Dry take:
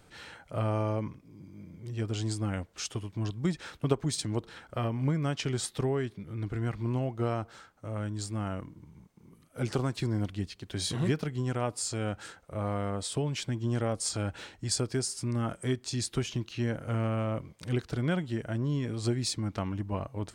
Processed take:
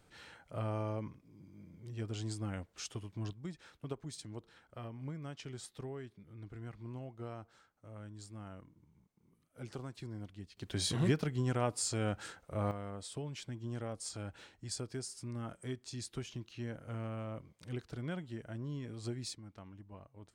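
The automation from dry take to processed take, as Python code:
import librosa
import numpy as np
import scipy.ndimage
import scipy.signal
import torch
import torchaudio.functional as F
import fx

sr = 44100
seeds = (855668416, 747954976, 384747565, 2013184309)

y = fx.gain(x, sr, db=fx.steps((0.0, -7.5), (3.33, -14.5), (10.57, -2.0), (12.71, -11.0), (19.35, -19.0)))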